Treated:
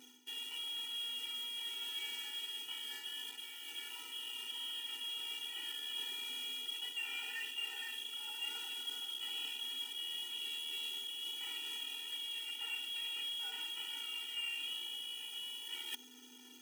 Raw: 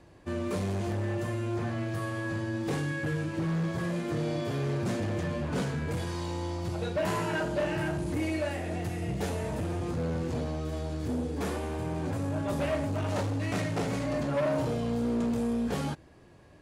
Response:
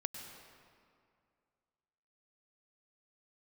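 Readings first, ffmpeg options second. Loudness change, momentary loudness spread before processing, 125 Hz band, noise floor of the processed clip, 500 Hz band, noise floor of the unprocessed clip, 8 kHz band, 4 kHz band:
-8.0 dB, 4 LU, under -40 dB, -56 dBFS, -34.0 dB, -54 dBFS, -3.0 dB, +10.0 dB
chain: -filter_complex "[0:a]lowshelf=f=170:g=3.5,lowpass=f=2900:t=q:w=0.5098,lowpass=f=2900:t=q:w=0.6013,lowpass=f=2900:t=q:w=0.9,lowpass=f=2900:t=q:w=2.563,afreqshift=-3400,asplit=2[s0][s1];[s1]adynamicsmooth=sensitivity=6.5:basefreq=660,volume=0.794[s2];[s0][s2]amix=inputs=2:normalize=0,acrusher=bits=6:dc=4:mix=0:aa=0.000001,aeval=exprs='val(0)+0.00447*(sin(2*PI*50*n/s)+sin(2*PI*2*50*n/s)/2+sin(2*PI*3*50*n/s)/3+sin(2*PI*4*50*n/s)/4+sin(2*PI*5*50*n/s)/5)':c=same,areverse,acompressor=threshold=0.0126:ratio=16,areverse,afftfilt=real='re*eq(mod(floor(b*sr/1024/250),2),1)':imag='im*eq(mod(floor(b*sr/1024/250),2),1)':win_size=1024:overlap=0.75,volume=1.26"

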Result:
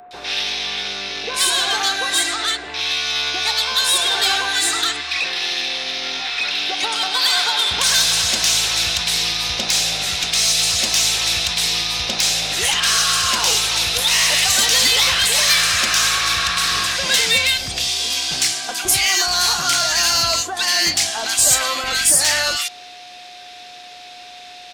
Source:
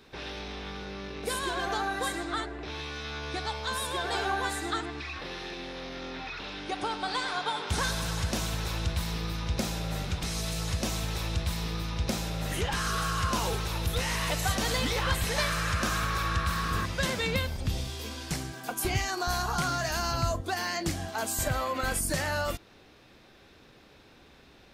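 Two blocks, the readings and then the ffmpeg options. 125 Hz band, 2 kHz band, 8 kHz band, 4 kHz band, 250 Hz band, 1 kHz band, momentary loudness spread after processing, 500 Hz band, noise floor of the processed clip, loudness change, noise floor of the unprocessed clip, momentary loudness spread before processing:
-5.0 dB, +13.0 dB, +19.5 dB, +20.0 dB, -1.0 dB, +7.5 dB, 8 LU, +4.0 dB, -38 dBFS, +15.0 dB, -56 dBFS, 9 LU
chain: -filter_complex "[0:a]lowpass=8600,asplit=2[s0][s1];[s1]highpass=f=720:p=1,volume=5.01,asoftclip=type=tanh:threshold=0.188[s2];[s0][s2]amix=inputs=2:normalize=0,lowpass=f=2100:p=1,volume=0.501,acrossover=split=1300[s3][s4];[s4]adelay=110[s5];[s3][s5]amix=inputs=2:normalize=0,aeval=exprs='val(0)+0.00891*sin(2*PI*720*n/s)':c=same,acrossover=split=160|810|2200[s6][s7][s8][s9];[s9]aeval=exprs='0.0794*sin(PI/2*1.41*val(0)/0.0794)':c=same[s10];[s6][s7][s8][s10]amix=inputs=4:normalize=0,crystalizer=i=8.5:c=0,volume=0.891"

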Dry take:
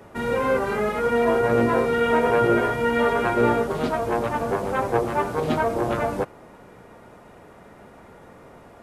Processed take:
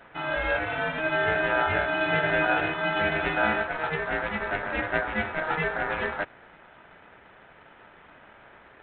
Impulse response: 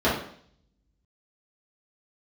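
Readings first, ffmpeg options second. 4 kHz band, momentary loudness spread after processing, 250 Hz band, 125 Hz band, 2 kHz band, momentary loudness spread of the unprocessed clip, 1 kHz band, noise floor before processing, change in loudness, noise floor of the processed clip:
+2.0 dB, 6 LU, -9.0 dB, -6.5 dB, +4.5 dB, 6 LU, -5.0 dB, -48 dBFS, -4.0 dB, -53 dBFS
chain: -af "aeval=exprs='val(0)*sin(2*PI*1100*n/s)':c=same,volume=0.794" -ar 8000 -c:a adpcm_g726 -b:a 32k

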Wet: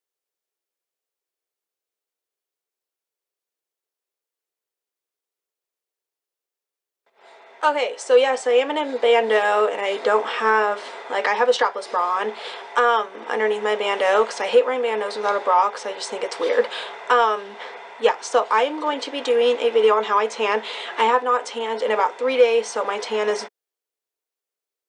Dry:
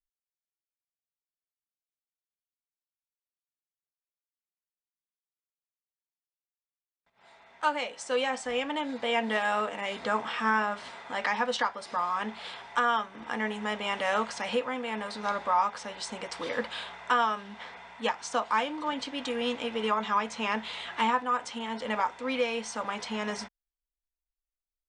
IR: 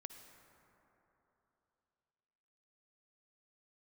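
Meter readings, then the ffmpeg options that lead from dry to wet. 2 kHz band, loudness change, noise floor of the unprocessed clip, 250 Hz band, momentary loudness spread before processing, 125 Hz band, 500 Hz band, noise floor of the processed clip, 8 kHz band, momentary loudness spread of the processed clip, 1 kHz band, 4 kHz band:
+7.0 dB, +10.0 dB, under -85 dBFS, +1.0 dB, 10 LU, no reading, +14.5 dB, under -85 dBFS, +6.5 dB, 10 LU, +8.0 dB, +6.5 dB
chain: -af "highpass=f=420:t=q:w=3.5,acontrast=69"

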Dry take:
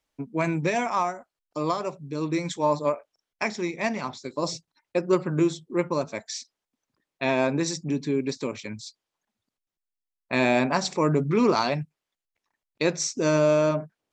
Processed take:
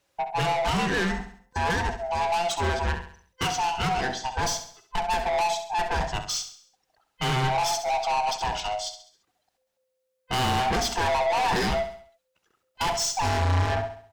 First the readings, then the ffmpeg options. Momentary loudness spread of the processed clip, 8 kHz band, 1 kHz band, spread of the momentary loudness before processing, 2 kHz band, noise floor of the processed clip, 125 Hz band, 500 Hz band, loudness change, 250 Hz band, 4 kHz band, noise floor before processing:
7 LU, +3.5 dB, +5.5 dB, 12 LU, +2.5 dB, -77 dBFS, +1.5 dB, -4.5 dB, -0.5 dB, -8.5 dB, +6.0 dB, under -85 dBFS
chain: -filter_complex "[0:a]afftfilt=real='real(if(lt(b,1008),b+24*(1-2*mod(floor(b/24),2)),b),0)':imag='imag(if(lt(b,1008),b+24*(1-2*mod(floor(b/24),2)),b),0)':win_size=2048:overlap=0.75,aeval=exprs='(tanh(39.8*val(0)+0.1)-tanh(0.1))/39.8':c=same,asplit=2[s0][s1];[s1]aecho=0:1:67|134|201|268|335:0.316|0.139|0.0612|0.0269|0.0119[s2];[s0][s2]amix=inputs=2:normalize=0,adynamicequalizer=threshold=0.00316:dfrequency=6800:dqfactor=0.7:tfrequency=6800:tqfactor=0.7:attack=5:release=100:ratio=0.375:range=2.5:mode=cutabove:tftype=highshelf,volume=2.82"

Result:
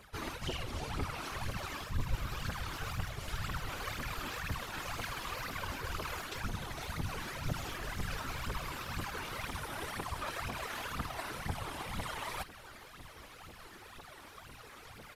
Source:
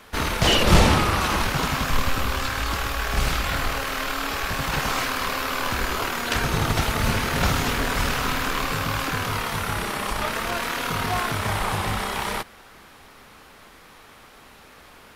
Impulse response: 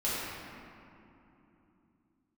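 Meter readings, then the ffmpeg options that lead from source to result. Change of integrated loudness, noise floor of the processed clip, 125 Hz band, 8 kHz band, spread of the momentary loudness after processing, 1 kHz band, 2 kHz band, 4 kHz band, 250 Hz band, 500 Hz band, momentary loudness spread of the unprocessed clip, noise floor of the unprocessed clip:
-16.0 dB, -53 dBFS, -14.0 dB, -16.0 dB, 13 LU, -16.0 dB, -15.5 dB, -17.0 dB, -17.0 dB, -17.0 dB, 7 LU, -49 dBFS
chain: -af "areverse,acompressor=threshold=0.0251:ratio=16,areverse,aphaser=in_gain=1:out_gain=1:delay=3.6:decay=0.77:speed=2:type=triangular,afftfilt=real='hypot(re,im)*cos(2*PI*random(0))':imag='hypot(re,im)*sin(2*PI*random(1))':win_size=512:overlap=0.75,aresample=32000,aresample=44100,volume=0.794"

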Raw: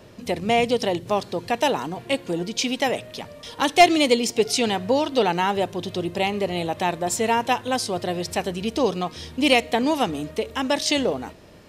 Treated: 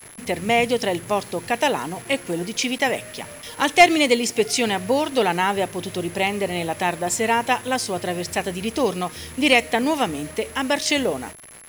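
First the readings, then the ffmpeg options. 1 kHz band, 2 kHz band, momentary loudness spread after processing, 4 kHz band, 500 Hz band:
+0.5 dB, +4.5 dB, 10 LU, +0.5 dB, 0.0 dB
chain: -af "acrusher=bits=6:mix=0:aa=0.000001,equalizer=f=2000:t=o:w=1:g=6,equalizer=f=4000:t=o:w=1:g=-3,equalizer=f=8000:t=o:w=1:g=3,aeval=exprs='val(0)+0.00708*sin(2*PI*11000*n/s)':c=same"

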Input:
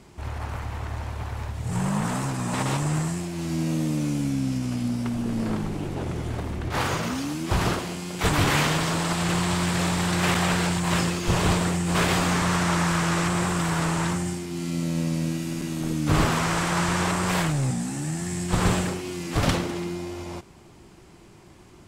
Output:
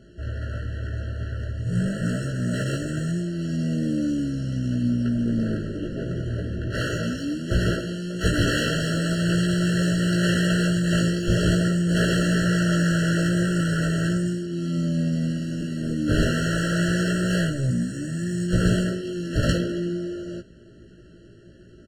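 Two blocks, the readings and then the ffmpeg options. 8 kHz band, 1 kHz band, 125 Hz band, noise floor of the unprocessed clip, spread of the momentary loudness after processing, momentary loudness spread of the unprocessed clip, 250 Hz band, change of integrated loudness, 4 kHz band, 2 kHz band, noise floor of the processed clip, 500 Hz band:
-5.0 dB, -9.5 dB, +2.5 dB, -50 dBFS, 9 LU, 10 LU, +3.0 dB, +1.0 dB, -1.0 dB, 0.0 dB, -48 dBFS, +2.0 dB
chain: -filter_complex "[0:a]asplit=2[s0][s1];[s1]adelay=17,volume=0.708[s2];[s0][s2]amix=inputs=2:normalize=0,adynamicsmooth=sensitivity=6.5:basefreq=5300,afftfilt=real='re*eq(mod(floor(b*sr/1024/660),2),0)':imag='im*eq(mod(floor(b*sr/1024/660),2),0)':win_size=1024:overlap=0.75"

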